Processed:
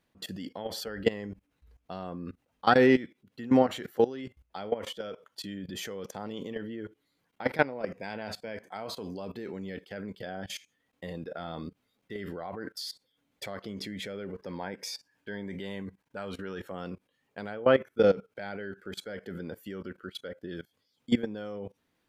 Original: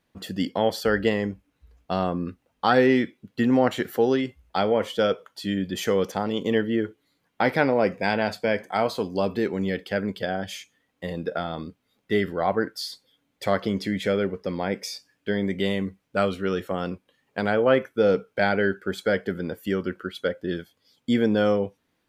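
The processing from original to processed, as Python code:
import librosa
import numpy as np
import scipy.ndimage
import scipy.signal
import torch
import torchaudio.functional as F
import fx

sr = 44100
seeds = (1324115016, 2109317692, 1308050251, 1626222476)

y = fx.level_steps(x, sr, step_db=19)
y = fx.small_body(y, sr, hz=(920.0, 1600.0), ring_ms=20, db=9, at=(14.35, 16.69))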